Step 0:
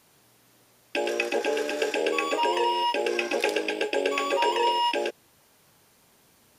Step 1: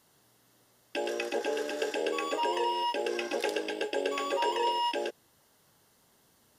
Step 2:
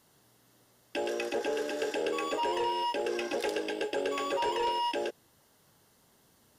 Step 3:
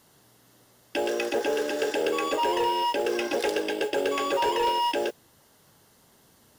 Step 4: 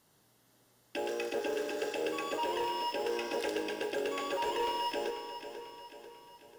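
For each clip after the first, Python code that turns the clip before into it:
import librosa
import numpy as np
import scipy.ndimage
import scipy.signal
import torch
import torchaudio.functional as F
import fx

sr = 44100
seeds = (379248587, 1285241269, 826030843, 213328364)

y1 = fx.notch(x, sr, hz=2400.0, q=5.8)
y1 = y1 * 10.0 ** (-5.0 / 20.0)
y2 = fx.low_shelf(y1, sr, hz=410.0, db=3.0)
y2 = 10.0 ** (-23.0 / 20.0) * np.tanh(y2 / 10.0 ** (-23.0 / 20.0))
y3 = fx.mod_noise(y2, sr, seeds[0], snr_db=25)
y3 = y3 * 10.0 ** (5.5 / 20.0)
y4 = fx.comb_fb(y3, sr, f0_hz=52.0, decay_s=1.7, harmonics='all', damping=0.0, mix_pct=70)
y4 = fx.echo_feedback(y4, sr, ms=492, feedback_pct=51, wet_db=-10.5)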